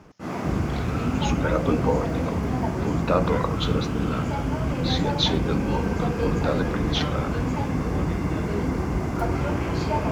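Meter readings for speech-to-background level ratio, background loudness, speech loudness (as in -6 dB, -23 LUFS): -2.0 dB, -26.0 LUFS, -28.0 LUFS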